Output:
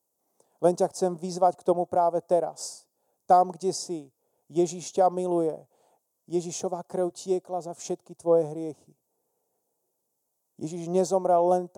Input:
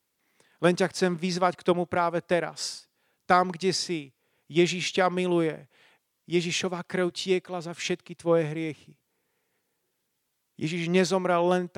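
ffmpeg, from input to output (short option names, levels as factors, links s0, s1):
-af "firequalizer=gain_entry='entry(110,0);entry(680,14);entry(1300,-5);entry(1900,-19);entry(6500,8)':delay=0.05:min_phase=1,volume=0.422"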